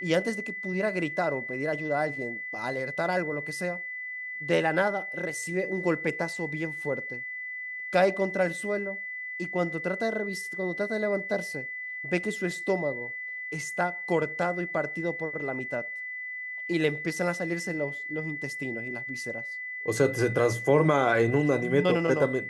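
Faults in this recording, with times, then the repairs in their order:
whistle 2,000 Hz −34 dBFS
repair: notch filter 2,000 Hz, Q 30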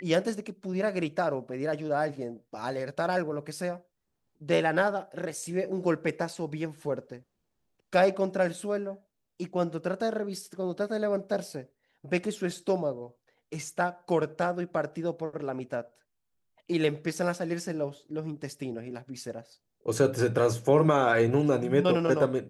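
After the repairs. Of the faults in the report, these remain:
none of them is left

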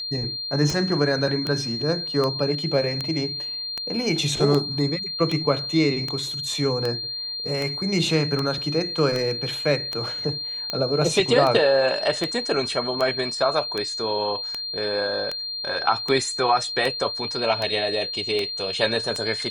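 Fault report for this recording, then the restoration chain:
scratch tick 78 rpm
whistle 4,200 Hz −28 dBFS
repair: click removal
notch filter 4,200 Hz, Q 30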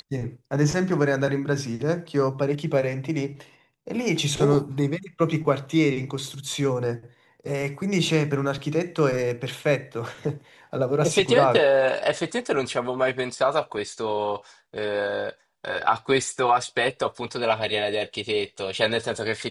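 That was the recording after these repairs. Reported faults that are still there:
none of them is left

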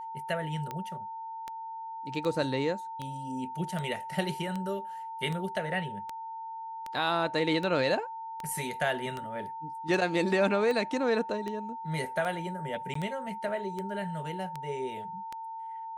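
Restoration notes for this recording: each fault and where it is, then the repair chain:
scratch tick 78 rpm −22 dBFS
whistle 900 Hz −37 dBFS
0:12.94–0:12.95: drop-out 14 ms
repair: click removal
notch filter 900 Hz, Q 30
repair the gap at 0:12.94, 14 ms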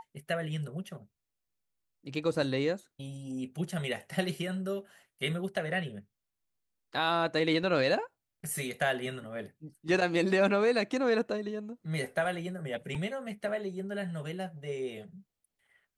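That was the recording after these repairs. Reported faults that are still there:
none of them is left

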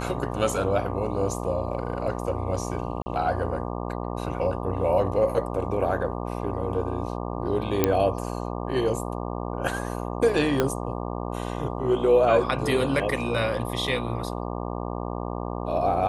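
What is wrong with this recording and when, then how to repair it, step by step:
mains buzz 60 Hz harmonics 20 −31 dBFS
0:03.02–0:03.06: drop-out 40 ms
0:07.84: click −5 dBFS
0:10.60: click −8 dBFS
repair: click removal
hum removal 60 Hz, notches 20
repair the gap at 0:03.02, 40 ms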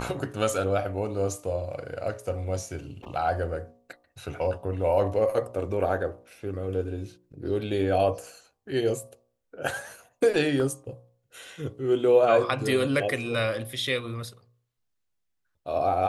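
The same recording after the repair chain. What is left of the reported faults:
0:10.60: click

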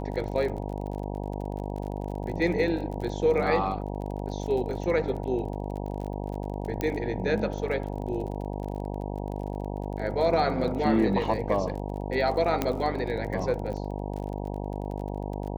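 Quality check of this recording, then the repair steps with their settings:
mains buzz 50 Hz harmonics 19 −33 dBFS
surface crackle 33 per second −35 dBFS
0:06.81: click −16 dBFS
0:12.62: click −11 dBFS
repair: click removal
hum removal 50 Hz, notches 19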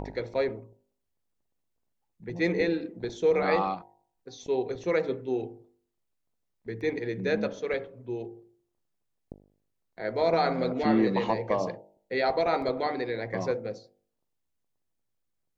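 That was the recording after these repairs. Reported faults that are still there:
0:06.81: click
0:12.62: click

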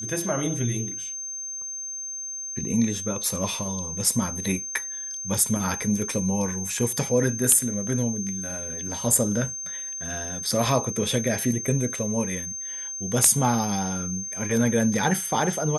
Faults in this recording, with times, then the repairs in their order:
whistle 6,300 Hz −31 dBFS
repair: notch filter 6,300 Hz, Q 30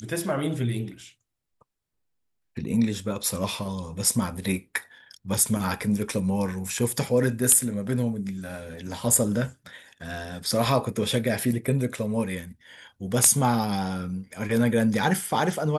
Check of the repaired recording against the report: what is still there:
none of them is left

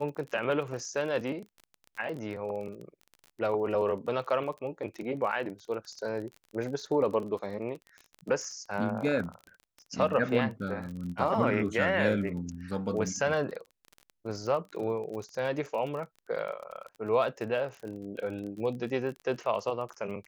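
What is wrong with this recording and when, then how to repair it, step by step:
surface crackle 28 per second −37 dBFS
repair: click removal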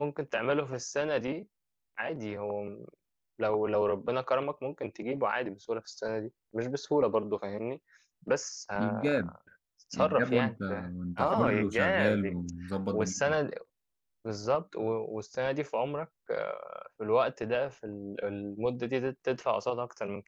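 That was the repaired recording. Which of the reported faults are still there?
none of them is left

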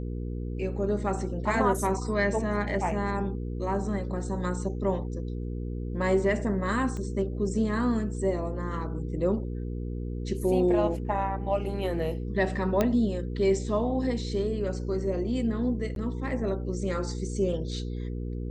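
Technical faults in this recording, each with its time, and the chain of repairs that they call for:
mains hum 60 Hz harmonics 8 −33 dBFS
0:06.97: click −25 dBFS
0:12.81: click −11 dBFS
0:15.95–0:15.96: drop-out 12 ms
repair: click removal
hum removal 60 Hz, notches 8
repair the gap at 0:15.95, 12 ms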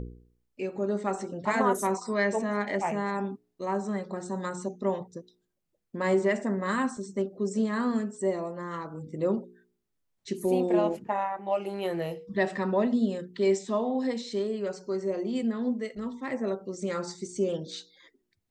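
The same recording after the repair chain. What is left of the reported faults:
0:06.97: click

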